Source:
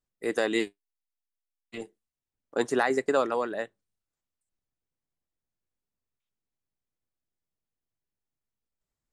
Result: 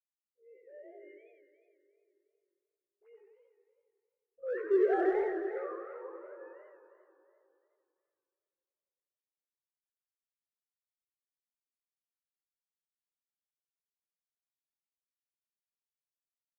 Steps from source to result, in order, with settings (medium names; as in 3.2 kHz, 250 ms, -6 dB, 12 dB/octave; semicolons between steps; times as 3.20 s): formants replaced by sine waves; Doppler pass-by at 2.57 s, 17 m/s, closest 1.9 m; low-pass 1.9 kHz 24 dB/octave; reverberation RT60 1.5 s, pre-delay 18 ms, DRR 10 dB; dynamic bell 930 Hz, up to -7 dB, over -57 dBFS, Q 2.9; phase dispersion highs, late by 51 ms, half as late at 690 Hz; flange 0.37 Hz, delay 2.4 ms, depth 3 ms, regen +59%; in parallel at -10 dB: overload inside the chain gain 34 dB; on the sum: tempo 0.55×; modulated delay 90 ms, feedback 71%, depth 195 cents, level -5.5 dB